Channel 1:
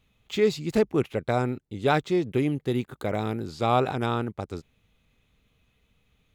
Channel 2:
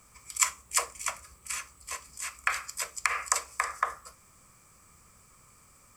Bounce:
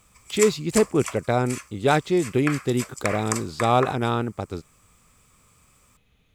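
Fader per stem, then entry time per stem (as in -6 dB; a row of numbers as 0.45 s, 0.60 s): +3.0 dB, -1.5 dB; 0.00 s, 0.00 s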